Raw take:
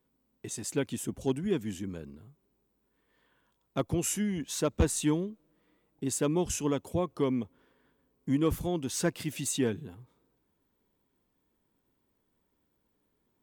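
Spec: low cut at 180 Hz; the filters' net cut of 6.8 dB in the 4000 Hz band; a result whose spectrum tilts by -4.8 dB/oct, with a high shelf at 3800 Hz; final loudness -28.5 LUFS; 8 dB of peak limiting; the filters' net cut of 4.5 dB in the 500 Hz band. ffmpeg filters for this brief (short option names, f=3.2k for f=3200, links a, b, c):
-af "highpass=180,equalizer=f=500:t=o:g=-5.5,highshelf=f=3.8k:g=-4.5,equalizer=f=4k:t=o:g=-6,volume=8.5dB,alimiter=limit=-16.5dB:level=0:latency=1"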